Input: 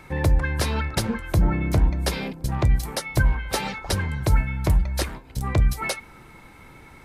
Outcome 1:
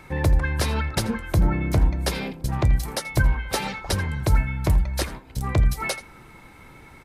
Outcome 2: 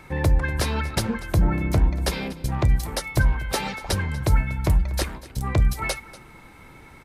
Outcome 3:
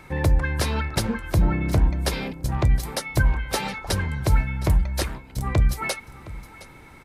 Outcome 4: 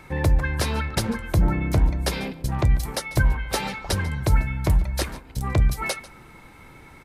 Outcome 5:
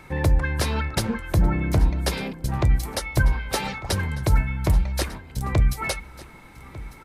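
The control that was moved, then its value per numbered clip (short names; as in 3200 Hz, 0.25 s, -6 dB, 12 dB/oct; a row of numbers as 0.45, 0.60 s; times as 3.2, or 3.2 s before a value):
echo, time: 83, 240, 715, 144, 1198 ms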